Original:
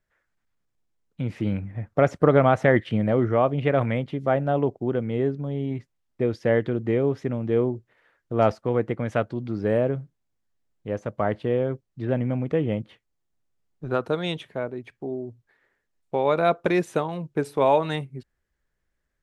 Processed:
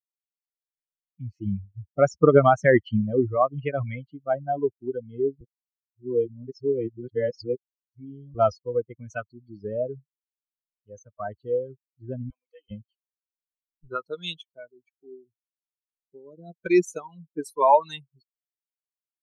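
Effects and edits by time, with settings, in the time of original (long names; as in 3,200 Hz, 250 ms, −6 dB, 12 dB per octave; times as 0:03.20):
0:05.41–0:08.35: reverse
0:12.30–0:12.71: high-pass filter 830 Hz
0:15.24–0:16.57: drawn EQ curve 310 Hz 0 dB, 2,200 Hz −27 dB, 5,100 Hz −8 dB
whole clip: spectral dynamics exaggerated over time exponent 3; graphic EQ with 15 bands 400 Hz +5 dB, 1,000 Hz +7 dB, 6,300 Hz +10 dB; level +3 dB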